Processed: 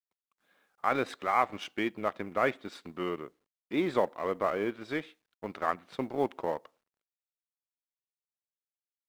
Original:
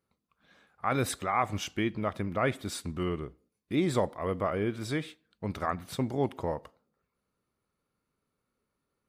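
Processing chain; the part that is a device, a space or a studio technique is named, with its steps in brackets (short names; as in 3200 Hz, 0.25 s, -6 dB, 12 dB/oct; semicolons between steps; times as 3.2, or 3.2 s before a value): phone line with mismatched companding (BPF 300–3300 Hz; G.711 law mismatch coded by A); gain +2.5 dB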